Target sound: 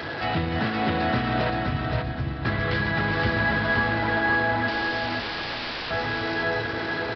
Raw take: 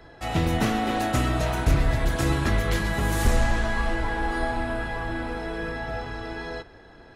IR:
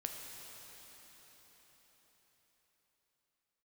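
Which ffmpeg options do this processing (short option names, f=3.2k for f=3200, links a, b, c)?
-filter_complex "[0:a]aeval=exprs='val(0)+0.5*0.0266*sgn(val(0))':c=same,highpass=f=80:w=0.5412,highpass=f=80:w=1.3066,agate=range=-6dB:threshold=-21dB:ratio=16:detection=peak,equalizer=f=1.6k:w=2.8:g=5,asplit=2[a][b];[b]acompressor=threshold=-36dB:ratio=6,volume=-3dB[c];[a][c]amix=inputs=2:normalize=0,alimiter=limit=-20dB:level=0:latency=1:release=258,asettb=1/sr,asplit=3[d][e][f];[d]atrim=end=1.504[g];[e]atrim=start=1.5:end=2.45,asetpts=PTS-STARTPTS,afade=t=in:d=0.004:c=qsin,afade=t=out:st=0.946:d=0.004:c=qsin,acrossover=split=220[h][i];[i]acompressor=threshold=-55dB:ratio=2[j];[h][j]amix=inputs=2:normalize=0[k];[f]atrim=start=2.446[l];[g][k]acrossfade=d=0.004:c1=hsin:c2=qsin[m];[m][l]acrossfade=d=0.004:c1=qsin:c2=hsin,asettb=1/sr,asplit=3[n][o][p];[n]atrim=end=4.684[q];[o]atrim=start=4.68:end=5.91,asetpts=PTS-STARTPTS,afade=t=in:d=0.004:c=qsin,afade=t=out:st=1.226:d=0.004:c=qsin,aeval=exprs='(mod(37.6*val(0)+1,2)-1)/37.6':c=same[r];[p]atrim=start=5.906[s];[q][r]acrossfade=d=0.004:c1=hsin:c2=qsin[t];[t][s]acrossfade=d=0.004:c1=qsin:c2=hsin,asplit=2[u][v];[v]aecho=0:1:520|1040|1560|2080:0.708|0.234|0.0771|0.0254[w];[u][w]amix=inputs=2:normalize=0,aresample=11025,aresample=44100,volume=4.5dB"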